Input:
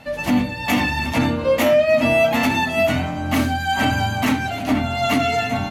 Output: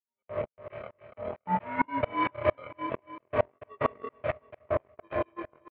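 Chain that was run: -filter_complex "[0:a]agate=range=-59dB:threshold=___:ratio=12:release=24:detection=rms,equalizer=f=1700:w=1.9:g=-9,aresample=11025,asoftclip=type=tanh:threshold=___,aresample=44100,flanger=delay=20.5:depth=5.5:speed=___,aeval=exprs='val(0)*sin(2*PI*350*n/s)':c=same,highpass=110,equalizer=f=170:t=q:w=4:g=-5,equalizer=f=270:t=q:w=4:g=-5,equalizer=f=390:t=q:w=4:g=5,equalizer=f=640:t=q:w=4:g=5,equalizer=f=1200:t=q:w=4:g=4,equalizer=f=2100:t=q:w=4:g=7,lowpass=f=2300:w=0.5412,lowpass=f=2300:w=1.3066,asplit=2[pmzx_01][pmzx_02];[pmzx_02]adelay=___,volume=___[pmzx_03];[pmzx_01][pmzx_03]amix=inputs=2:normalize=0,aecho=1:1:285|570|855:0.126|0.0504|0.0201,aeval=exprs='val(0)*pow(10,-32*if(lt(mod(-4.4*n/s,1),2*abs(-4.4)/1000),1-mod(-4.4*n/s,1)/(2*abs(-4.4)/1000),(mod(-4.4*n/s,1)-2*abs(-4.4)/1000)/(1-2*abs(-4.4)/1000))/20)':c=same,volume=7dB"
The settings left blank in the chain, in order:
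-18dB, -16dB, 0.6, 15, -12.5dB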